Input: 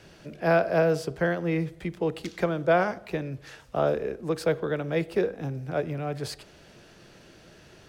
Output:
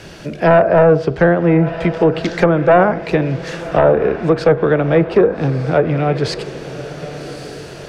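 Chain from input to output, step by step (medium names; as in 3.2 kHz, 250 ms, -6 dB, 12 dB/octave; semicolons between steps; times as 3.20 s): sine folder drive 6 dB, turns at -9.5 dBFS; echo that smears into a reverb 1191 ms, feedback 42%, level -14 dB; low-pass that closes with the level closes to 1.4 kHz, closed at -13 dBFS; trim +5.5 dB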